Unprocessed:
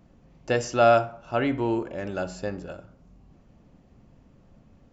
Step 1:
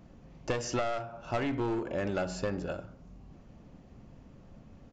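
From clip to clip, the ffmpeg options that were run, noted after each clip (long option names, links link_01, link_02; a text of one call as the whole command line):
ffmpeg -i in.wav -af "aresample=16000,aeval=exprs='clip(val(0),-1,0.0531)':channel_layout=same,aresample=44100,acompressor=threshold=-30dB:ratio=16,volume=2.5dB" out.wav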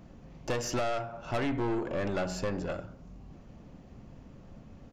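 ffmpeg -i in.wav -af "aeval=exprs='(tanh(31.6*val(0)+0.4)-tanh(0.4))/31.6':channel_layout=same,volume=4dB" out.wav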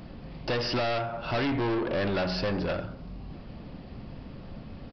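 ffmpeg -i in.wav -af "highshelf=frequency=3500:gain=10,aresample=11025,asoftclip=type=tanh:threshold=-32.5dB,aresample=44100,volume=8dB" out.wav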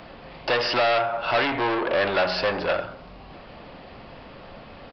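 ffmpeg -i in.wav -filter_complex "[0:a]acrossover=split=460 4700:gain=0.158 1 0.178[link_01][link_02][link_03];[link_01][link_02][link_03]amix=inputs=3:normalize=0,acontrast=71,volume=3dB" out.wav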